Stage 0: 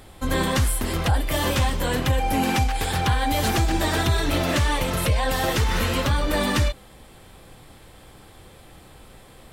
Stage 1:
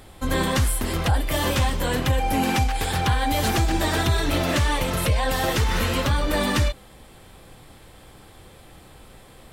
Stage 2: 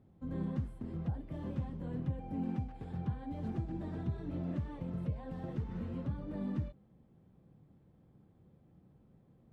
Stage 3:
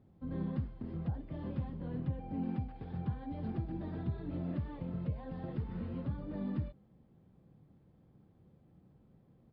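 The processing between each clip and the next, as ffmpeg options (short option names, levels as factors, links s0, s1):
-af anull
-af "bandpass=f=170:t=q:w=1.8:csg=0,volume=0.422"
-af "aresample=11025,aresample=44100"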